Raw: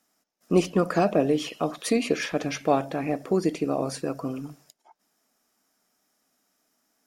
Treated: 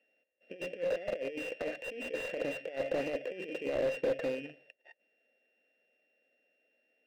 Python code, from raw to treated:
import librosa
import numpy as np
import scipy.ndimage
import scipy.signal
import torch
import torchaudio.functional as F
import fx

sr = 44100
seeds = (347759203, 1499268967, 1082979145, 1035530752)

y = np.r_[np.sort(x[:len(x) // 16 * 16].reshape(-1, 16), axis=1).ravel(), x[len(x) // 16 * 16:]]
y = scipy.signal.sosfilt(scipy.signal.butter(2, 4700.0, 'lowpass', fs=sr, output='sos'), y)
y = fx.over_compress(y, sr, threshold_db=-28.0, ratio=-0.5)
y = fx.vowel_filter(y, sr, vowel='e')
y = fx.slew_limit(y, sr, full_power_hz=12.0)
y = F.gain(torch.from_numpy(y), 6.5).numpy()